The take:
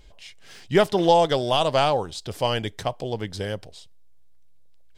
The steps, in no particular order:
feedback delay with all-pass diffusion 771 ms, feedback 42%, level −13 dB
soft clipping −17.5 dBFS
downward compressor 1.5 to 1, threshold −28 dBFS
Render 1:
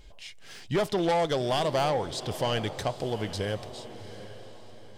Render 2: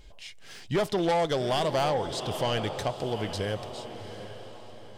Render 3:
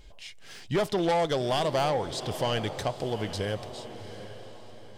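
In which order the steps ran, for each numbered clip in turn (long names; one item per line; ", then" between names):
soft clipping, then downward compressor, then feedback delay with all-pass diffusion
feedback delay with all-pass diffusion, then soft clipping, then downward compressor
soft clipping, then feedback delay with all-pass diffusion, then downward compressor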